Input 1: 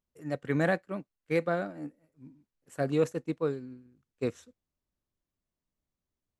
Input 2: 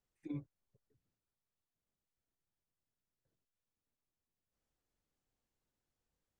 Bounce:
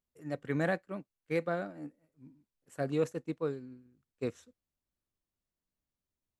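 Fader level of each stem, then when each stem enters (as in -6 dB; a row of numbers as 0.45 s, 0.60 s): -4.0 dB, -17.5 dB; 0.00 s, 0.00 s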